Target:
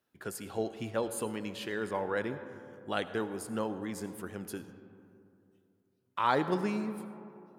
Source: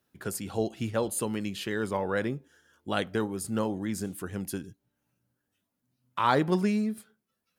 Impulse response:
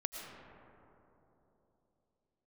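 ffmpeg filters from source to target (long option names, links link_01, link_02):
-filter_complex "[0:a]bass=frequency=250:gain=-6,treble=frequency=4000:gain=-4,asplit=2[link_01][link_02];[1:a]atrim=start_sample=2205,asetrate=57330,aresample=44100[link_03];[link_02][link_03]afir=irnorm=-1:irlink=0,volume=-4dB[link_04];[link_01][link_04]amix=inputs=2:normalize=0,volume=-6dB"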